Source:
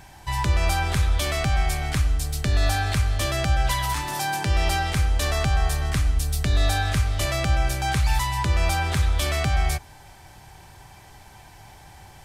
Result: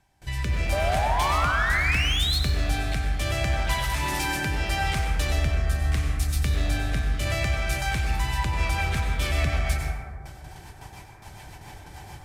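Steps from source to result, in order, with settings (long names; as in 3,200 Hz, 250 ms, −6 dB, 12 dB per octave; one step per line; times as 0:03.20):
noise gate with hold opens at −36 dBFS
rotating-speaker cabinet horn 0.75 Hz, later 7 Hz, at 0:08.00
in parallel at −2 dB: compressor whose output falls as the input rises −33 dBFS, ratio −1
on the sum: dynamic equaliser 2,400 Hz, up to +6 dB, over −47 dBFS, Q 2
sound drawn into the spectrogram rise, 0:00.72–0:02.39, 570–4,400 Hz −21 dBFS
gain into a clipping stage and back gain 16 dB
dense smooth reverb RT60 1.9 s, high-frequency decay 0.25×, pre-delay 80 ms, DRR 1.5 dB
level −5.5 dB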